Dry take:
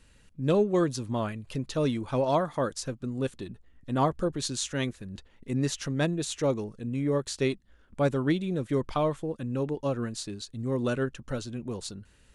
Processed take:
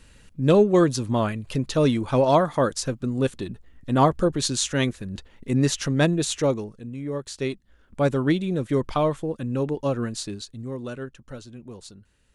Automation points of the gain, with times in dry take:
6.32 s +7 dB
6.97 s -4 dB
8.14 s +4.5 dB
10.34 s +4.5 dB
10.82 s -5.5 dB

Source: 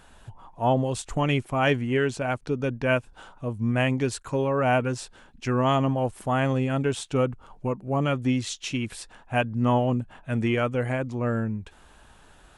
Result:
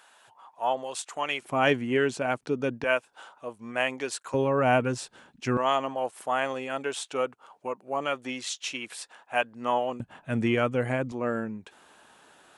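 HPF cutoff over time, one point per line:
730 Hz
from 1.42 s 200 Hz
from 2.84 s 520 Hz
from 4.34 s 130 Hz
from 5.57 s 530 Hz
from 10 s 130 Hz
from 11.12 s 260 Hz

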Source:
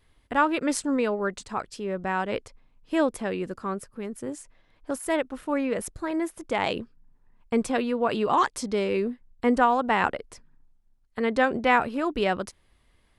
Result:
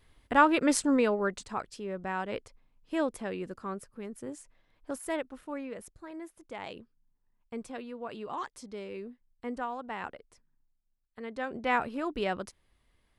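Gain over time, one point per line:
0.88 s +0.5 dB
1.89 s -6.5 dB
5.04 s -6.5 dB
5.91 s -15 dB
11.35 s -15 dB
11.75 s -6.5 dB

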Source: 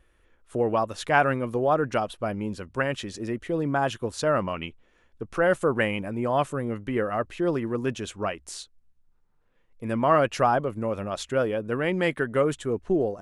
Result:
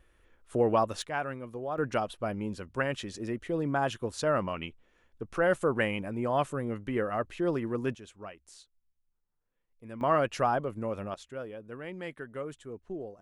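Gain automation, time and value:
-1 dB
from 1.02 s -12.5 dB
from 1.78 s -4 dB
from 7.95 s -15 dB
from 10.01 s -5.5 dB
from 11.14 s -15 dB

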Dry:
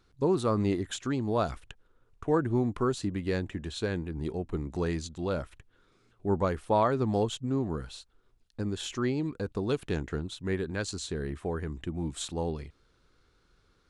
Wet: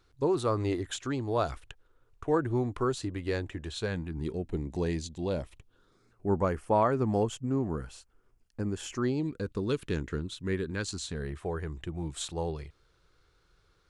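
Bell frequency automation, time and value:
bell -14 dB 0.37 oct
3.67 s 200 Hz
4.58 s 1300 Hz
5.39 s 1300 Hz
6.27 s 3800 Hz
8.92 s 3800 Hz
9.43 s 740 Hz
10.74 s 740 Hz
11.35 s 240 Hz

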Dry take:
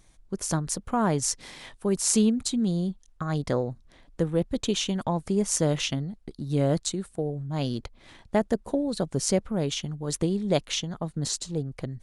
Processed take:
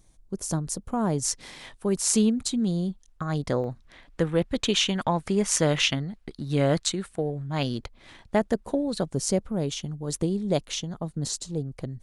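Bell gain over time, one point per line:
bell 2000 Hz 2.3 oct
-8 dB
from 1.25 s +0.5 dB
from 3.64 s +9 dB
from 7.63 s +2.5 dB
from 9.09 s -4.5 dB

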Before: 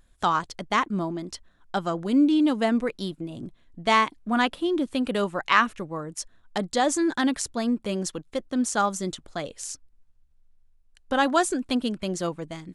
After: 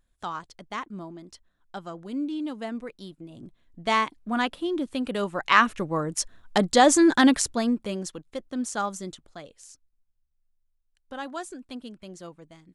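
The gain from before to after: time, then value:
3.05 s -10.5 dB
3.86 s -3 dB
5.17 s -3 dB
5.98 s +6 dB
7.31 s +6 dB
8.08 s -5 dB
8.94 s -5 dB
9.66 s -13.5 dB

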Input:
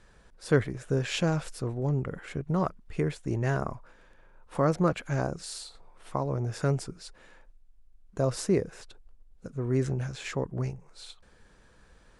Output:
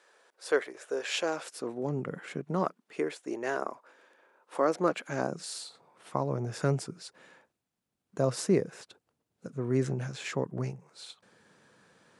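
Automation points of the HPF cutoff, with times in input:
HPF 24 dB/oct
1.16 s 400 Hz
2.14 s 140 Hz
3.11 s 300 Hz
4.61 s 300 Hz
5.57 s 130 Hz

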